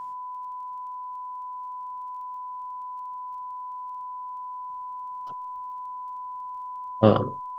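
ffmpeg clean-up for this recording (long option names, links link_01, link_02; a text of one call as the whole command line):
ffmpeg -i in.wav -af "adeclick=threshold=4,bandreject=frequency=1000:width=30" out.wav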